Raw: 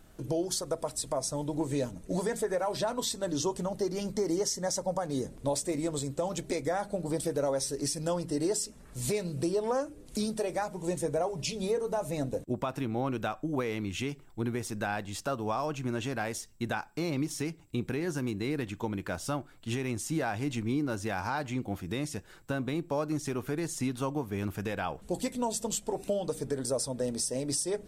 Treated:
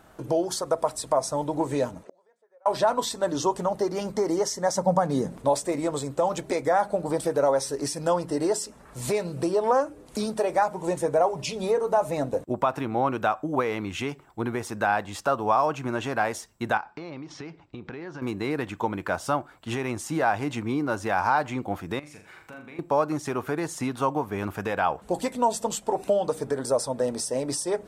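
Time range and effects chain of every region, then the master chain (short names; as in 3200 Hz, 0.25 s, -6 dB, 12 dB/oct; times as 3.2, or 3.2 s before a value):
2.03–2.66 bell 540 Hz +7.5 dB 0.25 oct + flipped gate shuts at -31 dBFS, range -39 dB + BPF 380–6000 Hz
4.75–5.42 bell 180 Hz +11.5 dB 0.81 oct + mismatched tape noise reduction encoder only
16.77–18.22 LPF 5000 Hz 24 dB/oct + compressor 12:1, threshold -37 dBFS
21.99–22.79 bell 2300 Hz +14 dB 0.34 oct + compressor 3:1, threshold -52 dBFS + flutter echo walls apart 6.9 m, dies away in 0.42 s
whole clip: HPF 47 Hz; bell 960 Hz +12 dB 2.2 oct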